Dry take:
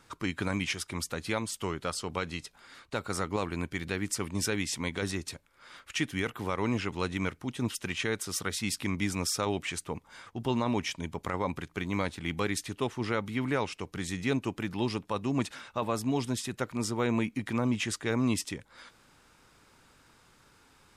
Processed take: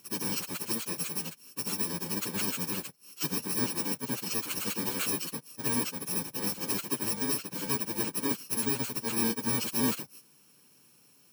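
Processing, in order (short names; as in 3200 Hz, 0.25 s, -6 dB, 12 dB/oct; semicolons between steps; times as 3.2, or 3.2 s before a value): FFT order left unsorted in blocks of 64 samples; plain phase-vocoder stretch 0.54×; HPF 140 Hz 24 dB/oct; gain +4 dB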